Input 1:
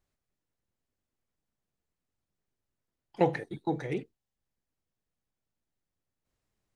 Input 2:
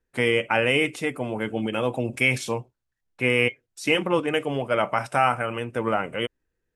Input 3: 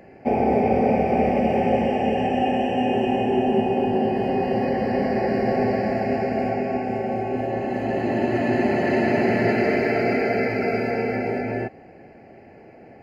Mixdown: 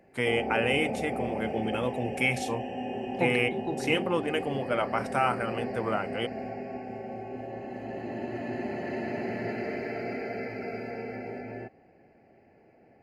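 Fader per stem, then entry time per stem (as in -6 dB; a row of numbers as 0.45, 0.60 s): -3.5, -5.5, -13.0 dB; 0.00, 0.00, 0.00 s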